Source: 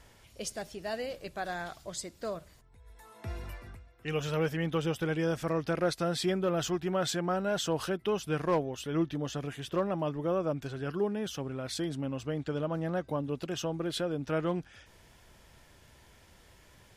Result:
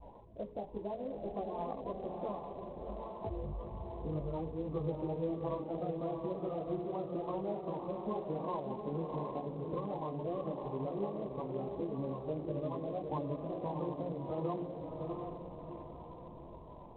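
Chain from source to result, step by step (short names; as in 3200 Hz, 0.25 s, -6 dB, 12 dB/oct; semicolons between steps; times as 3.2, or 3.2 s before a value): bin magnitudes rounded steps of 30 dB; steep low-pass 1100 Hz 96 dB/oct; low shelf 450 Hz -6.5 dB; notches 60/120/180/240/300/360/420/480 Hz; compressor 8:1, threshold -47 dBFS, peak gain reduction 19.5 dB; chorus voices 4, 0.75 Hz, delay 17 ms, depth 2.9 ms; diffused feedback echo 0.692 s, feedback 44%, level -3 dB; gain +13 dB; IMA ADPCM 32 kbps 8000 Hz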